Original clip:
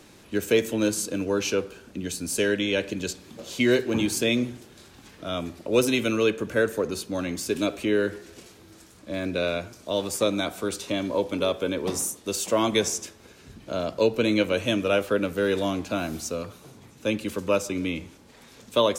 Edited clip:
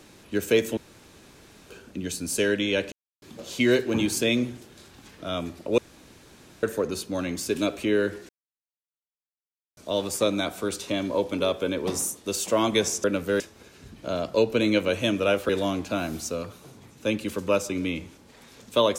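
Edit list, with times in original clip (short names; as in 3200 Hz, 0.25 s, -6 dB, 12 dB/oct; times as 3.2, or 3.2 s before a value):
0.77–1.7 room tone
2.92–3.22 mute
5.78–6.63 room tone
8.29–9.77 mute
15.13–15.49 move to 13.04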